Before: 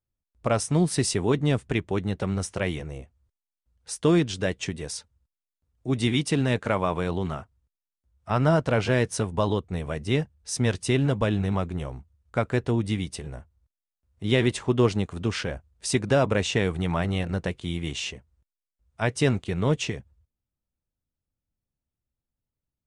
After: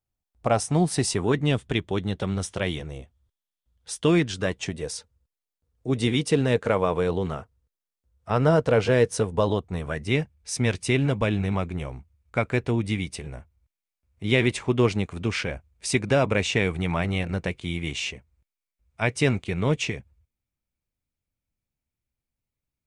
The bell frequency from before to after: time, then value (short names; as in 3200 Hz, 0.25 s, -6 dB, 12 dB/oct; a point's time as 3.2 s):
bell +9 dB 0.3 oct
1.06 s 760 Hz
1.56 s 3400 Hz
3.99 s 3400 Hz
4.85 s 470 Hz
9.43 s 470 Hz
10.07 s 2300 Hz